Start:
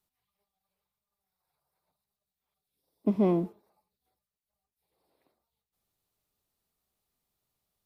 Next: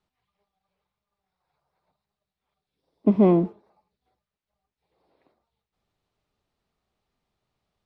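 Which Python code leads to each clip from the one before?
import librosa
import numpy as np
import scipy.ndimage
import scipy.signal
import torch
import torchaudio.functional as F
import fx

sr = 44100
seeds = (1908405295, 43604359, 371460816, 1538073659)

y = scipy.signal.sosfilt(scipy.signal.bessel(2, 3000.0, 'lowpass', norm='mag', fs=sr, output='sos'), x)
y = F.gain(torch.from_numpy(y), 7.5).numpy()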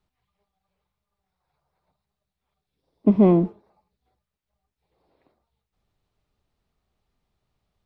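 y = fx.low_shelf(x, sr, hz=110.0, db=10.0)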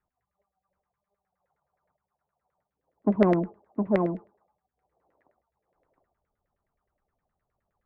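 y = x + 10.0 ** (-3.5 / 20.0) * np.pad(x, (int(713 * sr / 1000.0), 0))[:len(x)]
y = fx.filter_lfo_lowpass(y, sr, shape='saw_down', hz=9.6, low_hz=500.0, high_hz=2000.0, q=5.3)
y = fx.cheby_harmonics(y, sr, harmonics=(3,), levels_db=(-22,), full_scale_db=-0.5)
y = F.gain(torch.from_numpy(y), -6.0).numpy()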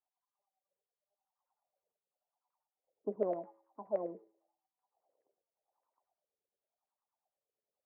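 y = fx.wah_lfo(x, sr, hz=0.89, low_hz=440.0, high_hz=1000.0, q=4.4)
y = fx.comb_fb(y, sr, f0_hz=110.0, decay_s=0.63, harmonics='odd', damping=0.0, mix_pct=50)
y = F.gain(torch.from_numpy(y), 1.0).numpy()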